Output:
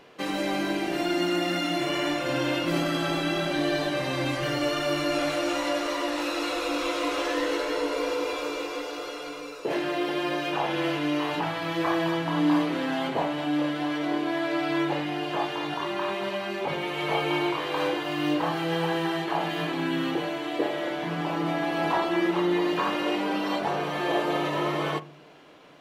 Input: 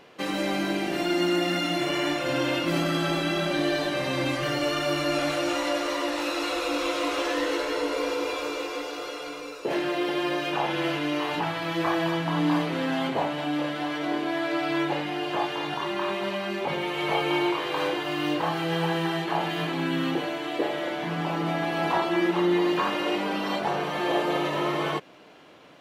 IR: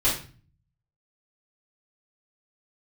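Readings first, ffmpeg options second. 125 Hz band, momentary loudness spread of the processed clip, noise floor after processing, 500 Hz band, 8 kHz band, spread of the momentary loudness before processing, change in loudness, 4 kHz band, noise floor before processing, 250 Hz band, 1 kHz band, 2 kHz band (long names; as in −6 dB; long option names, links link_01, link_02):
−1.5 dB, 5 LU, −37 dBFS, −0.5 dB, −1.0 dB, 5 LU, −0.5 dB, −1.0 dB, −37 dBFS, 0.0 dB, −0.5 dB, −1.0 dB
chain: -filter_complex "[0:a]asplit=2[link_01][link_02];[1:a]atrim=start_sample=2205,lowpass=2100[link_03];[link_02][link_03]afir=irnorm=-1:irlink=0,volume=-24.5dB[link_04];[link_01][link_04]amix=inputs=2:normalize=0,volume=-1dB"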